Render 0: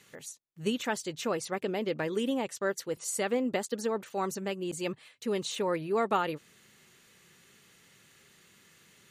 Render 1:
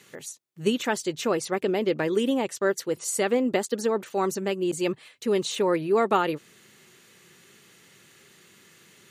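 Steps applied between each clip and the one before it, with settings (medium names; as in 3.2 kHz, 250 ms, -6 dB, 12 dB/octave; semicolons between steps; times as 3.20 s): high-pass 91 Hz; peaking EQ 360 Hz +4.5 dB 0.46 oct; trim +5 dB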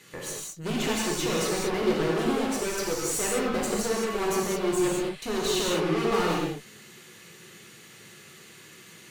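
valve stage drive 33 dB, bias 0.65; gated-style reverb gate 240 ms flat, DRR -4.5 dB; trim +3.5 dB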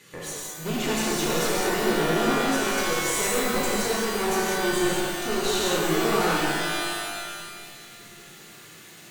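pitch-shifted reverb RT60 1.9 s, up +12 st, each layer -2 dB, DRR 3.5 dB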